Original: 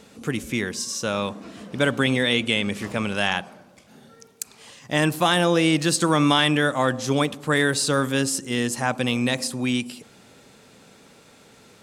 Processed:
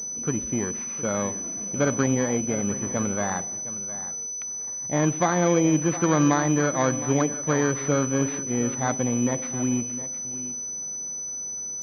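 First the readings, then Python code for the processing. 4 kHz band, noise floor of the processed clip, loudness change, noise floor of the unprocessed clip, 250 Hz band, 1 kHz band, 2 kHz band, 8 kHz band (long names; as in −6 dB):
−17.5 dB, −33 dBFS, −2.5 dB, −52 dBFS, −0.5 dB, −2.5 dB, −8.5 dB, +7.0 dB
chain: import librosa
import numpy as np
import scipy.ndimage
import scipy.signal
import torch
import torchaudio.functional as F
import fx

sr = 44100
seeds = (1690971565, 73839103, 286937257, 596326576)

y = fx.bit_reversed(x, sr, seeds[0], block=16)
y = fx.air_absorb(y, sr, metres=160.0)
y = y + 10.0 ** (-14.5 / 20.0) * np.pad(y, (int(712 * sr / 1000.0), 0))[:len(y)]
y = fx.pwm(y, sr, carrier_hz=6000.0)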